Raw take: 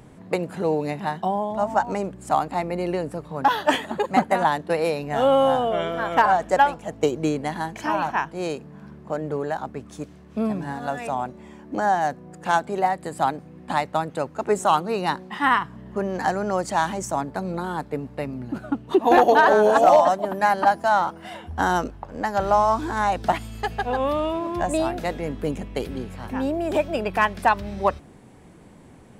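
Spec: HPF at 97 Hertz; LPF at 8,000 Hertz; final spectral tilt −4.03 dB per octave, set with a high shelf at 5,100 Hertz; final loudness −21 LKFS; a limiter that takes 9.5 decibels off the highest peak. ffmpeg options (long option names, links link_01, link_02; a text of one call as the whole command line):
ffmpeg -i in.wav -af "highpass=97,lowpass=8000,highshelf=frequency=5100:gain=4,volume=5.5dB,alimiter=limit=-8.5dB:level=0:latency=1" out.wav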